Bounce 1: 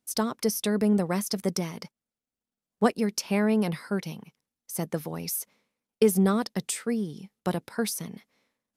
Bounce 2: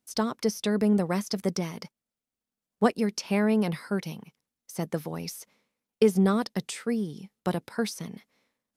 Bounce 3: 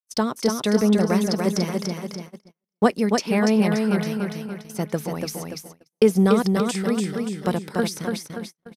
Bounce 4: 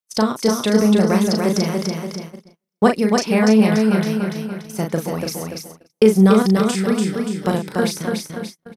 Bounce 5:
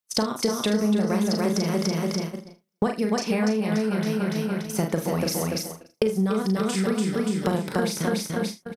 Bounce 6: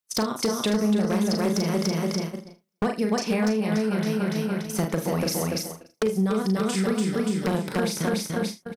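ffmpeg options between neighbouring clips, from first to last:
-filter_complex "[0:a]acrossover=split=6500[a][b];[b]acompressor=threshold=-45dB:ratio=4:attack=1:release=60[c];[a][c]amix=inputs=2:normalize=0"
-af "aecho=1:1:289|578|867|1156|1445|1734:0.631|0.303|0.145|0.0698|0.0335|0.0161,agate=range=-43dB:threshold=-40dB:ratio=16:detection=peak,volume=4.5dB"
-filter_complex "[0:a]asplit=2[a][b];[b]adelay=37,volume=-5dB[c];[a][c]amix=inputs=2:normalize=0,volume=3dB"
-af "acompressor=threshold=-23dB:ratio=10,aecho=1:1:48|76:0.224|0.133,volume=2.5dB"
-af "aeval=exprs='0.158*(abs(mod(val(0)/0.158+3,4)-2)-1)':c=same"

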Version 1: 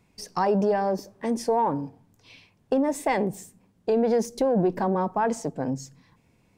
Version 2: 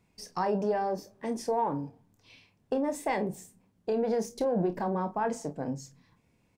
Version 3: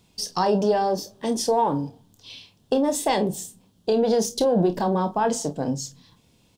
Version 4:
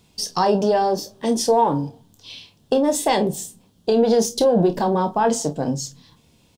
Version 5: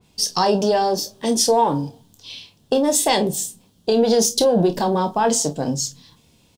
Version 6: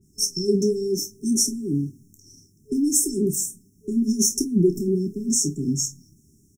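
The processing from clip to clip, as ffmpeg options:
-af "aecho=1:1:28|48:0.335|0.15,volume=-6dB"
-af "highshelf=f=2.7k:t=q:w=3:g=6,volume=8dB"
-filter_complex "[0:a]asplit=2[a][b];[b]adelay=13,volume=-12dB[c];[a][c]amix=inputs=2:normalize=0,volume=3dB"
-af "adynamicequalizer=threshold=0.0112:dfrequency=2500:dqfactor=0.7:tfrequency=2500:tqfactor=0.7:attack=5:release=100:ratio=0.375:range=3.5:mode=boostabove:tftype=highshelf"
-af "afftfilt=real='re*(1-between(b*sr/4096,430,5300))':imag='im*(1-between(b*sr/4096,430,5300))':win_size=4096:overlap=0.75"

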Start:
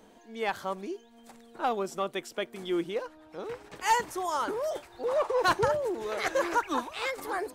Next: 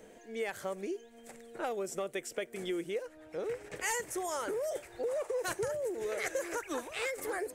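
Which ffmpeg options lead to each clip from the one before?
-filter_complex "[0:a]equalizer=f=125:t=o:w=1:g=3,equalizer=f=250:t=o:w=1:g=-4,equalizer=f=500:t=o:w=1:g=8,equalizer=f=1k:t=o:w=1:g=-9,equalizer=f=2k:t=o:w=1:g=7,equalizer=f=4k:t=o:w=1:g=-6,equalizer=f=8k:t=o:w=1:g=6,acrossover=split=6100[a][b];[a]acompressor=threshold=-33dB:ratio=6[c];[c][b]amix=inputs=2:normalize=0"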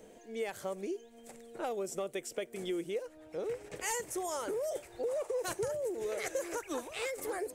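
-af "equalizer=f=1.7k:t=o:w=0.97:g=-5.5"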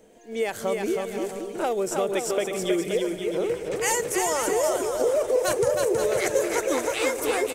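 -af "aecho=1:1:320|528|663.2|751.1|808.2:0.631|0.398|0.251|0.158|0.1,dynaudnorm=f=110:g=5:m=10.5dB"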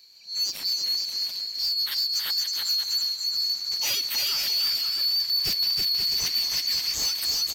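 -filter_complex "[0:a]afftfilt=real='real(if(lt(b,736),b+184*(1-2*mod(floor(b/184),2)),b),0)':imag='imag(if(lt(b,736),b+184*(1-2*mod(floor(b/184),2)),b),0)':win_size=2048:overlap=0.75,acrossover=split=300[a][b];[b]asoftclip=type=tanh:threshold=-22dB[c];[a][c]amix=inputs=2:normalize=0,volume=1.5dB"

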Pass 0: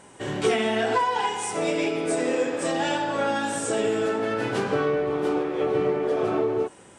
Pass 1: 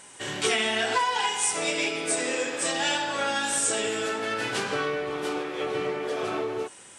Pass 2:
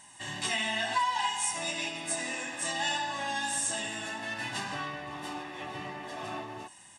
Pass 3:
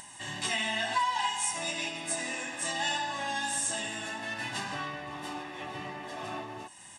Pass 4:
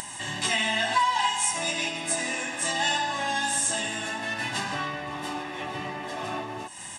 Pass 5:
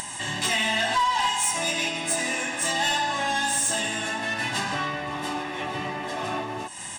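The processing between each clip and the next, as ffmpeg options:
-af "tiltshelf=f=1.3k:g=-8"
-af "aecho=1:1:1.1:0.94,volume=-8dB"
-af "acompressor=mode=upward:threshold=-42dB:ratio=2.5"
-af "acompressor=mode=upward:threshold=-37dB:ratio=2.5,volume=5.5dB"
-af "asoftclip=type=tanh:threshold=-20.5dB,volume=3.5dB"

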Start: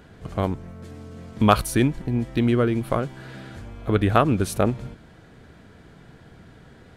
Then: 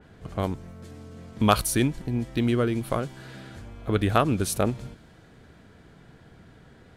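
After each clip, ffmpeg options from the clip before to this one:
-af "adynamicequalizer=threshold=0.00708:dfrequency=3200:dqfactor=0.7:tfrequency=3200:tqfactor=0.7:attack=5:release=100:ratio=0.375:range=3.5:mode=boostabove:tftype=highshelf,volume=-3.5dB"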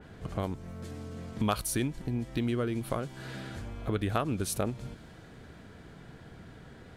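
-af "acompressor=threshold=-36dB:ratio=2,volume=2dB"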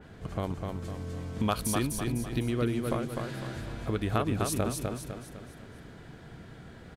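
-af "aecho=1:1:252|504|756|1008|1260:0.631|0.271|0.117|0.0502|0.0216"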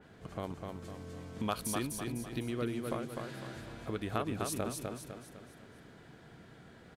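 -af "lowshelf=f=90:g=-12,volume=-5dB"

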